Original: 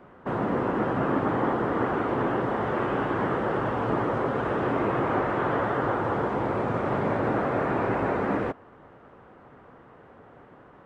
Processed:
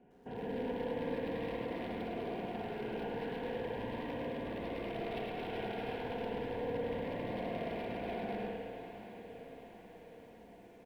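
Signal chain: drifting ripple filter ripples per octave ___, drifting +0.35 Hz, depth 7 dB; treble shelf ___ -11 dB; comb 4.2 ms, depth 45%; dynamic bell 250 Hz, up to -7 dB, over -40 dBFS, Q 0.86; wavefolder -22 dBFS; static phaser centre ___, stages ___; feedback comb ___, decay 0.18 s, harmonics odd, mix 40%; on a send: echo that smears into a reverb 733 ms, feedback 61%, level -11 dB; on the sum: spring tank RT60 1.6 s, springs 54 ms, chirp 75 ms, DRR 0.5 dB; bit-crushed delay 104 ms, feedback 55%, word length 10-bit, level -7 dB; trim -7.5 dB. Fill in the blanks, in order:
1.1, 4.3 kHz, 3 kHz, 4, 350 Hz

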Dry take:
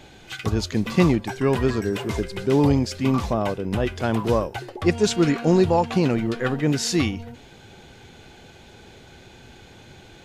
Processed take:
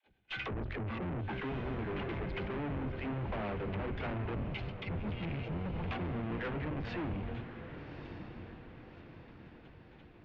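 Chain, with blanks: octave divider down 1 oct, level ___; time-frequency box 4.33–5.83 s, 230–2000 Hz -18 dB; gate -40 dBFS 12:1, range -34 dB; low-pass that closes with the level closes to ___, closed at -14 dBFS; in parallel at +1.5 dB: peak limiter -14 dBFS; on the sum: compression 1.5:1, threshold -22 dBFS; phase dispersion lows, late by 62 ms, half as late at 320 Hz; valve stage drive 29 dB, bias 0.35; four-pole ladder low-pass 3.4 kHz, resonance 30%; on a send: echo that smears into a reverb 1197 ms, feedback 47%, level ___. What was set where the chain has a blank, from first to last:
-1 dB, 380 Hz, -9.5 dB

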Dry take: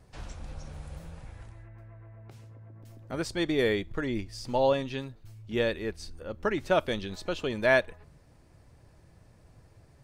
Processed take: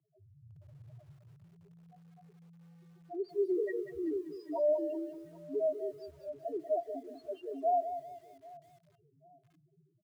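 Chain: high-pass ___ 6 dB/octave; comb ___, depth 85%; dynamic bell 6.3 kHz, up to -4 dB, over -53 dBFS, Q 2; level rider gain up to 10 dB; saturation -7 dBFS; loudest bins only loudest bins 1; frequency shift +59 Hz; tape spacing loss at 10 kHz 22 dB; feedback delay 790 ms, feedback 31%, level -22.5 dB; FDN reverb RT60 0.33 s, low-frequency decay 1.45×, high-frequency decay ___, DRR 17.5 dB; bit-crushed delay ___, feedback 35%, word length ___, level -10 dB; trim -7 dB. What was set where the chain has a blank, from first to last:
190 Hz, 3.3 ms, 0.3×, 191 ms, 9-bit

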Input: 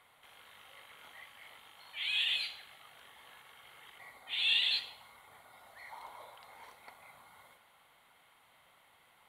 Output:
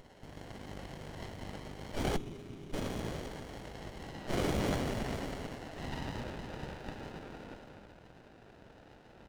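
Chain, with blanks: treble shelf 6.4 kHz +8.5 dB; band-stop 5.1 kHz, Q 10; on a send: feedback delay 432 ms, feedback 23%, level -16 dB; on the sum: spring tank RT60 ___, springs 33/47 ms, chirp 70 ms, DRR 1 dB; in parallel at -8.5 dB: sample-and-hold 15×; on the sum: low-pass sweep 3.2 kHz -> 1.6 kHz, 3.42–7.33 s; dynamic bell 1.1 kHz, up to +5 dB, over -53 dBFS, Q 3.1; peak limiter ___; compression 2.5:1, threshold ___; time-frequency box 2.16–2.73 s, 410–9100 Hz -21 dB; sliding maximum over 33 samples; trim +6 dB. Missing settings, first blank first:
2.5 s, -13 dBFS, -35 dBFS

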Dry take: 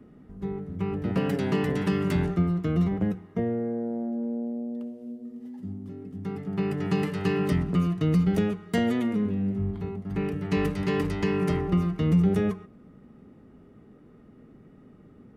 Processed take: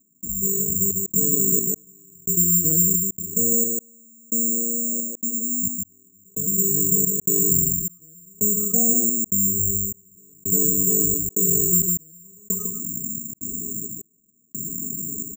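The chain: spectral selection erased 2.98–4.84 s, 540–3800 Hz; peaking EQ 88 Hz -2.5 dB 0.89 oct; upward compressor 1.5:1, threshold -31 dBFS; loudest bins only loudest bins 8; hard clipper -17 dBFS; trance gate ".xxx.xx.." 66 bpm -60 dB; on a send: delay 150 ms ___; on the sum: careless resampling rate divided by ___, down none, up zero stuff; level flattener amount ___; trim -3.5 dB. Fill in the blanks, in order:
-7.5 dB, 6×, 50%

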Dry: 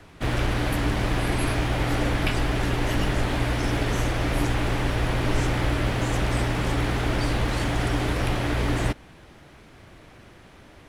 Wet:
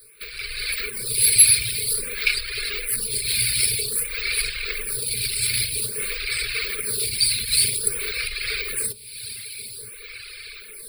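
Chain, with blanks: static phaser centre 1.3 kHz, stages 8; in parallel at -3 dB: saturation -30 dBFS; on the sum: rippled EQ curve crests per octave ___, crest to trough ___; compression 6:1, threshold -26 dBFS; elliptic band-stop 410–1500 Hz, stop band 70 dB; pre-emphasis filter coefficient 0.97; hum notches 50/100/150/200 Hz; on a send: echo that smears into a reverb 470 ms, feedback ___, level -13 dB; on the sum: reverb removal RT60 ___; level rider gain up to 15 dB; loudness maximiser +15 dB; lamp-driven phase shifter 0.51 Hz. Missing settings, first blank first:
0.92, 18 dB, 49%, 1.9 s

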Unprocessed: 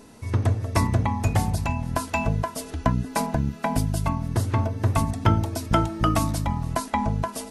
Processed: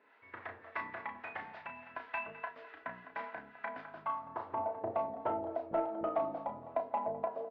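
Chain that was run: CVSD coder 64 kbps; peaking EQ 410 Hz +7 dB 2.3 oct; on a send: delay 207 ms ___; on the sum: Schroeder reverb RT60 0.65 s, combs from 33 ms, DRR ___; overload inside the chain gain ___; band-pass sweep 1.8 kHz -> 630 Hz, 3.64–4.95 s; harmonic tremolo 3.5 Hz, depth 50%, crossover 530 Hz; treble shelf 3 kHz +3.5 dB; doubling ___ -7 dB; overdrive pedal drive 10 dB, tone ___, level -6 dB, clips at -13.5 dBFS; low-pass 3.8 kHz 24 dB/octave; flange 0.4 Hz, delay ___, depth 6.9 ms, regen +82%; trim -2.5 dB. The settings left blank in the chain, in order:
-15.5 dB, 18 dB, 8 dB, 33 ms, 1.5 kHz, 8.3 ms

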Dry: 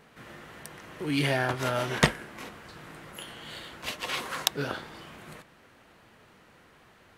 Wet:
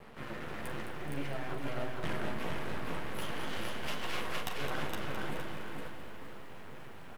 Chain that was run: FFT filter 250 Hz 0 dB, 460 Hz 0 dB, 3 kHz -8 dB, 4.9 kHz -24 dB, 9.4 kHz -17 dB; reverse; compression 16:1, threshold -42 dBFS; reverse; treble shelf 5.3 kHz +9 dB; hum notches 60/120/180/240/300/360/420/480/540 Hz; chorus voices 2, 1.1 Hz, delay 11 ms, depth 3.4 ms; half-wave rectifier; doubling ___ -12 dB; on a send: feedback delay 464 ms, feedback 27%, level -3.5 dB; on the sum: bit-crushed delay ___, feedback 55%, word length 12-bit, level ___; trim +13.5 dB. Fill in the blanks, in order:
42 ms, 212 ms, -9 dB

